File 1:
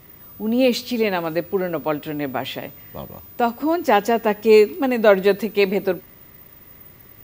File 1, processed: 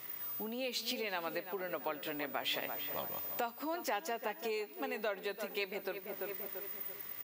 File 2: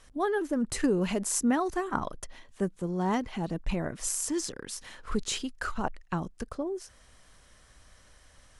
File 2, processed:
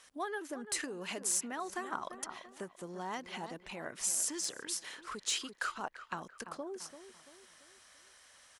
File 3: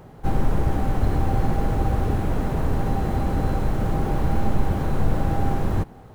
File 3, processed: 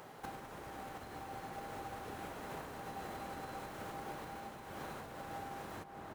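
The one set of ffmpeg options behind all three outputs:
-filter_complex "[0:a]asplit=2[s0][s1];[s1]adelay=339,lowpass=f=1800:p=1,volume=0.224,asplit=2[s2][s3];[s3]adelay=339,lowpass=f=1800:p=1,volume=0.44,asplit=2[s4][s5];[s5]adelay=339,lowpass=f=1800:p=1,volume=0.44,asplit=2[s6][s7];[s7]adelay=339,lowpass=f=1800:p=1,volume=0.44[s8];[s2][s4][s6][s8]amix=inputs=4:normalize=0[s9];[s0][s9]amix=inputs=2:normalize=0,acompressor=threshold=0.0355:ratio=12,highpass=f=1200:p=1,asoftclip=type=tanh:threshold=0.1,volume=1.26"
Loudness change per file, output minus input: -19.0 LU, -6.5 LU, -21.5 LU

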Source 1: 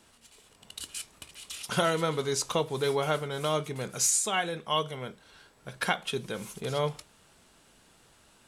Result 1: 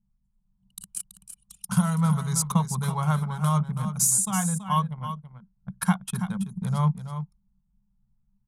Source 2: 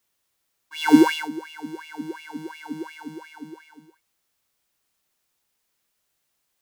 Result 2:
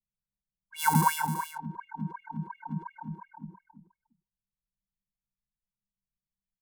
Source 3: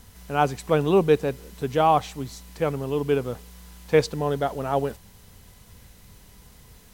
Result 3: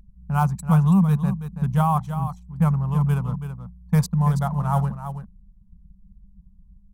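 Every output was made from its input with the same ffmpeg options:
-af "anlmdn=6.31,asoftclip=type=hard:threshold=0.398,firequalizer=gain_entry='entry(110,0);entry(190,14);entry(290,-29);entry(890,-3);entry(1800,-12);entry(2900,-16);entry(5100,-8);entry(9600,6)':delay=0.05:min_phase=1,alimiter=limit=0.133:level=0:latency=1:release=398,adynamicequalizer=threshold=0.00224:dfrequency=1100:dqfactor=4.1:tfrequency=1100:tqfactor=4.1:attack=5:release=100:ratio=0.375:range=2.5:mode=boostabove:tftype=bell,aecho=1:1:329:0.316,volume=2.11"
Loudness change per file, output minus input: +4.0 LU, -8.5 LU, +2.0 LU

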